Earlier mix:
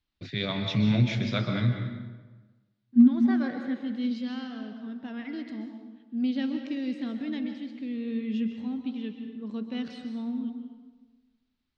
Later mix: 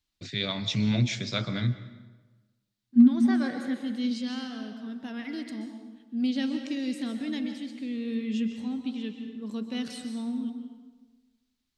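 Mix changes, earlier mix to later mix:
first voice: send -11.0 dB; master: remove air absorption 210 m

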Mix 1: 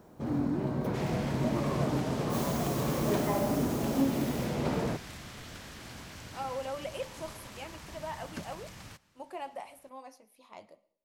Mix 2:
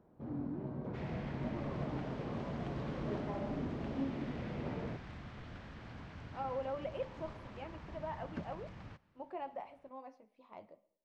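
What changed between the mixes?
first sound -9.0 dB; master: add tape spacing loss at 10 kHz 36 dB

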